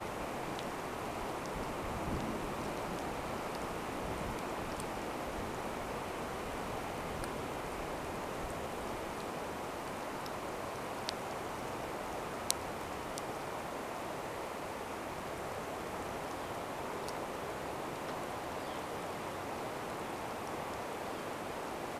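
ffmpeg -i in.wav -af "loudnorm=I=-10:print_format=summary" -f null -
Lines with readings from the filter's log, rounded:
Input Integrated:    -40.3 LUFS
Input True Peak:      -5.6 dBTP
Input LRA:             1.6 LU
Input Threshold:     -50.3 LUFS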